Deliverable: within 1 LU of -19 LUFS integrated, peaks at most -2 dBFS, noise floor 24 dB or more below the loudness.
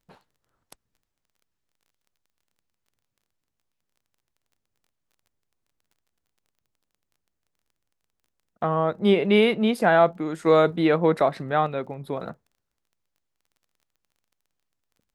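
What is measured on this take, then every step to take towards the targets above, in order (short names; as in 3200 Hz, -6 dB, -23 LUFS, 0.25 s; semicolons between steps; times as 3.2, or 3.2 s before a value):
ticks 20/s; loudness -21.5 LUFS; peak -5.5 dBFS; loudness target -19.0 LUFS
-> de-click; gain +2.5 dB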